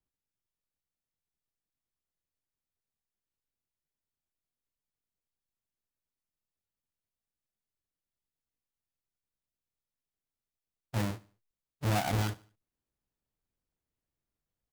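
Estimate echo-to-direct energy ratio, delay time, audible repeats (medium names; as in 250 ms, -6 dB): -20.5 dB, 73 ms, 2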